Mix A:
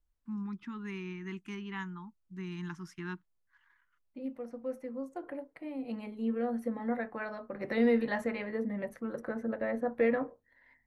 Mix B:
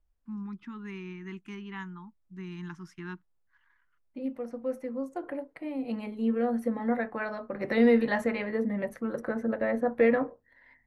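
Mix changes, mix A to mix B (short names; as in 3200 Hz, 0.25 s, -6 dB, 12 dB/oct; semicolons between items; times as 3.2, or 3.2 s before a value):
first voice: add high shelf 4800 Hz -4.5 dB; second voice +5.0 dB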